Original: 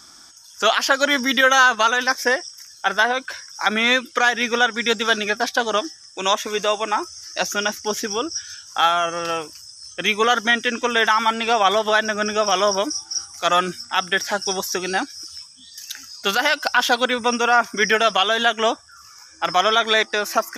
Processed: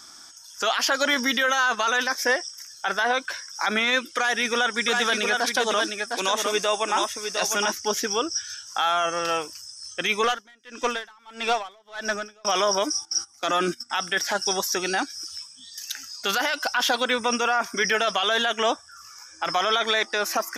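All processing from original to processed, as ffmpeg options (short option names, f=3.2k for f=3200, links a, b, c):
-filter_complex "[0:a]asettb=1/sr,asplit=3[a][b][c];[a]atrim=end=4.154[d];[b]atrim=start=4.15:end=7.72,asetpts=PTS-STARTPTS,afade=t=in:d=0.004:c=qsin,afade=t=out:st=3.566:d=0.004:c=qsin,equalizer=f=9.3k:t=o:w=0.47:g=9,aecho=1:1:707:0.422,atrim=end_sample=157437[e];[c]atrim=start=7.716[f];[d][e]acrossfade=d=0.004:c1=hsin:c2=qsin[g];[g][f]acrossfade=d=0.004:c1=qsin:c2=hsin,asettb=1/sr,asplit=3[h][i][j];[h]atrim=end=10.244[k];[i]atrim=start=10.24:end=12.45,asetpts=PTS-STARTPTS,afade=t=in:d=0.004:c=qsin,afade=t=out:st=2.206:d=0.004:c=qsin,aeval=exprs='(tanh(3.98*val(0)+0.25)-tanh(0.25))/3.98':c=same,aeval=exprs='val(0)*pow(10,-34*(0.5-0.5*cos(2*PI*1.6*n/s))/20)':c=same[l];[j]atrim=start=12.446[m];[k][l]acrossfade=d=0.004:c1=hsin:c2=qsin[n];[n][m]acrossfade=d=0.004:c1=qsin:c2=hsin,asettb=1/sr,asplit=3[o][p][q];[o]atrim=end=13.054[r];[p]atrim=start=13.05:end=13.9,asetpts=PTS-STARTPTS,afade=t=in:d=0.004:c=qsin,afade=t=out:st=0.846:d=0.004:c=qsin,agate=range=-15dB:threshold=-34dB:ratio=16:release=100:detection=peak,equalizer=f=280:w=2.2:g=11[s];[q]atrim=start=13.896[t];[r][s]acrossfade=d=0.004:c1=hsin:c2=qsin[u];[u][t]acrossfade=d=0.004:c1=qsin:c2=hsin,lowshelf=f=230:g=-7,alimiter=limit=-12.5dB:level=0:latency=1:release=12"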